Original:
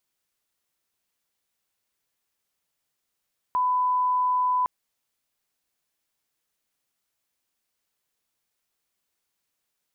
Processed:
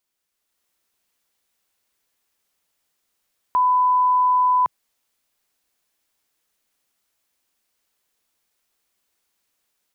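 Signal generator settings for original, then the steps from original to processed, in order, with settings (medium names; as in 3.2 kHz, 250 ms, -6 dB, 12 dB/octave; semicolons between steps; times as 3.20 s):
line-up tone -20 dBFS 1.11 s
peaking EQ 130 Hz -9 dB 0.47 oct; level rider gain up to 6 dB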